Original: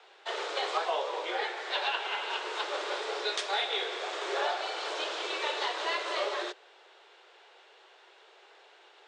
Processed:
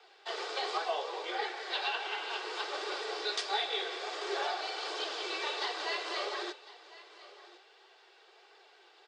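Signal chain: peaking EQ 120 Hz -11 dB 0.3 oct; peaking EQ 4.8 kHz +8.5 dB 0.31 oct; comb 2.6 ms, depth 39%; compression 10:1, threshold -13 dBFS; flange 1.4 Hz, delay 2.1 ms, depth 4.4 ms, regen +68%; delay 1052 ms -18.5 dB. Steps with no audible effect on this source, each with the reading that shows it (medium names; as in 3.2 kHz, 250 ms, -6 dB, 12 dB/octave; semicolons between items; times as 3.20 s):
peaking EQ 120 Hz: input has nothing below 290 Hz; compression, threshold -13 dBFS: peak at its input -15.5 dBFS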